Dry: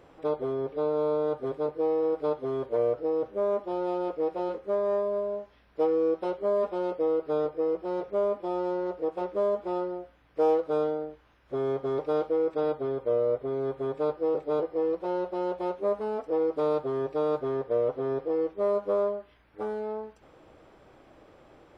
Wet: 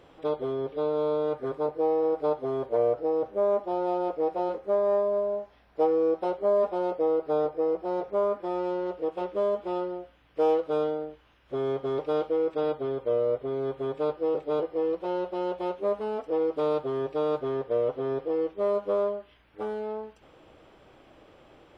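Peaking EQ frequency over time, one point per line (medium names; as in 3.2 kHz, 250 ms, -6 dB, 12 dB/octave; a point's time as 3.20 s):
peaking EQ +6.5 dB 0.57 oct
1.24 s 3.3 kHz
1.68 s 740 Hz
8.05 s 740 Hz
8.73 s 3 kHz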